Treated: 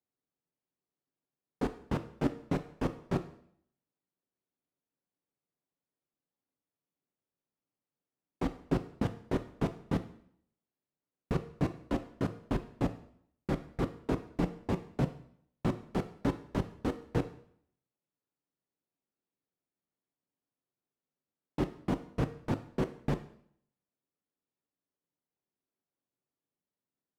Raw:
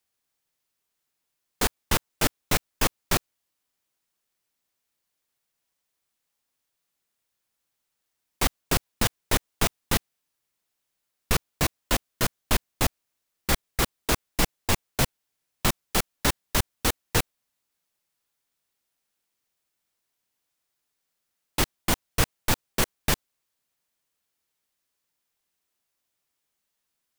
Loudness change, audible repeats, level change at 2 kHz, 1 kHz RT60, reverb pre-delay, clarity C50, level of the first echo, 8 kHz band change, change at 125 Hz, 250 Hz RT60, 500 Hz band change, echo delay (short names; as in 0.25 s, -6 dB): -8.5 dB, none, -16.5 dB, 0.65 s, 4 ms, 13.5 dB, none, -29.0 dB, -3.5 dB, 0.70 s, -3.5 dB, none